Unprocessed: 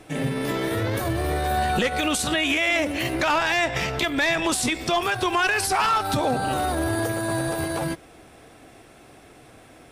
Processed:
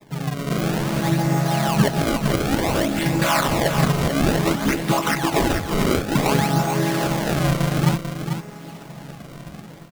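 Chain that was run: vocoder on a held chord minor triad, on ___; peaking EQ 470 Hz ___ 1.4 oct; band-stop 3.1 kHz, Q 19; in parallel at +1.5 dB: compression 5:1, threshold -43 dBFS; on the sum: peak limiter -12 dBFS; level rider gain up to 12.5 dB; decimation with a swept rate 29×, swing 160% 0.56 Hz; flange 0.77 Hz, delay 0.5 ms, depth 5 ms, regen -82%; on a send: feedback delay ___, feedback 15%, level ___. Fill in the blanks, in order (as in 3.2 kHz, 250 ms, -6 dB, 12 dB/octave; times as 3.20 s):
C#3, -8 dB, 442 ms, -7.5 dB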